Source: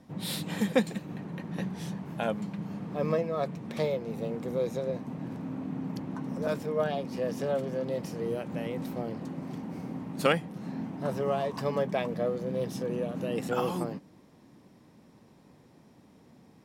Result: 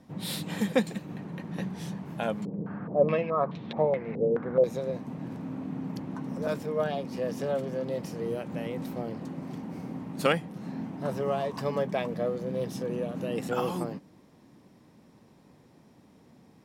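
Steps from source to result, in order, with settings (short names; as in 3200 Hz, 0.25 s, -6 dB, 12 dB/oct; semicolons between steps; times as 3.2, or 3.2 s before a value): 2.45–4.64 stepped low-pass 4.7 Hz 460–3700 Hz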